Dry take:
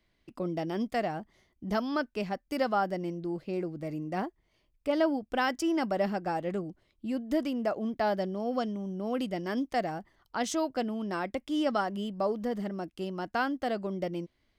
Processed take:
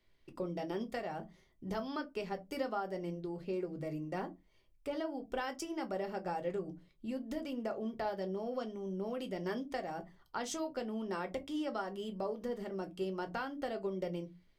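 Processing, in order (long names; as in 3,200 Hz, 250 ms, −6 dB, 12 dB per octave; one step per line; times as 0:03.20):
mains-hum notches 60/120/180 Hz
downward compressor, threshold −32 dBFS, peak gain reduction 11 dB
convolution reverb, pre-delay 5 ms, DRR 6 dB
level −3.5 dB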